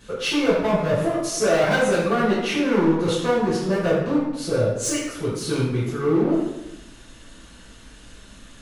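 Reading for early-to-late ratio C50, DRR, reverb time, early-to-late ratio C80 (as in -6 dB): 1.0 dB, -11.0 dB, 1.0 s, 4.0 dB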